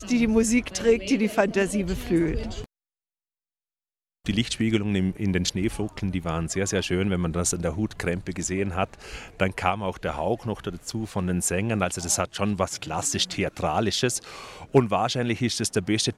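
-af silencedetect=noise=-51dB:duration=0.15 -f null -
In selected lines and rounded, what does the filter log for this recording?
silence_start: 2.66
silence_end: 4.25 | silence_duration: 1.59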